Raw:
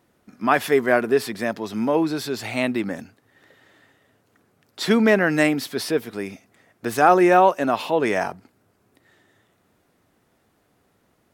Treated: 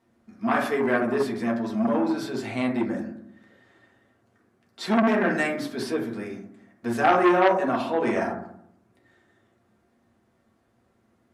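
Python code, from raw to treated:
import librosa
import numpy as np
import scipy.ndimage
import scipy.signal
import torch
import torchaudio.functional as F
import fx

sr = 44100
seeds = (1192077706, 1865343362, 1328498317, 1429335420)

y = scipy.signal.sosfilt(scipy.signal.bessel(8, 10000.0, 'lowpass', norm='mag', fs=sr, output='sos'), x)
y = fx.rev_fdn(y, sr, rt60_s=0.69, lf_ratio=1.45, hf_ratio=0.3, size_ms=26.0, drr_db=-3.0)
y = fx.transformer_sat(y, sr, knee_hz=1200.0)
y = y * 10.0 ** (-8.5 / 20.0)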